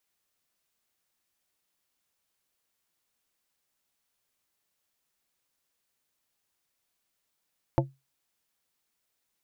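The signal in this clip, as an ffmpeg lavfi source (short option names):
-f lavfi -i "aevalsrc='0.112*pow(10,-3*t/0.23)*sin(2*PI*135*t)+0.1*pow(10,-3*t/0.121)*sin(2*PI*337.5*t)+0.0891*pow(10,-3*t/0.087)*sin(2*PI*540*t)+0.0794*pow(10,-3*t/0.075)*sin(2*PI*675*t)+0.0708*pow(10,-3*t/0.062)*sin(2*PI*877.5*t)':d=0.89:s=44100"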